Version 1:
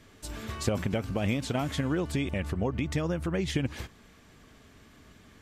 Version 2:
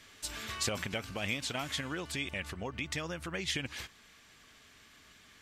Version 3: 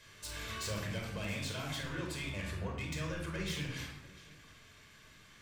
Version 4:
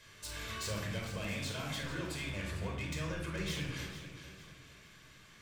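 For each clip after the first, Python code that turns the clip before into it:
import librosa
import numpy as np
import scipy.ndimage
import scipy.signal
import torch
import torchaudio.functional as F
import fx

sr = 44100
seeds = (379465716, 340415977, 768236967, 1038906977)

y1 = fx.high_shelf(x, sr, hz=6100.0, db=-7.0)
y1 = fx.rider(y1, sr, range_db=4, speed_s=2.0)
y1 = fx.tilt_shelf(y1, sr, db=-9.5, hz=1100.0)
y1 = y1 * 10.0 ** (-3.0 / 20.0)
y2 = y1 + 10.0 ** (-24.0 / 20.0) * np.pad(y1, (int(694 * sr / 1000.0), 0))[:len(y1)]
y2 = 10.0 ** (-34.5 / 20.0) * np.tanh(y2 / 10.0 ** (-34.5 / 20.0))
y2 = fx.room_shoebox(y2, sr, seeds[0], volume_m3=2400.0, walls='furnished', distance_m=5.2)
y2 = y2 * 10.0 ** (-5.0 / 20.0)
y3 = fx.echo_feedback(y2, sr, ms=451, feedback_pct=39, wet_db=-12)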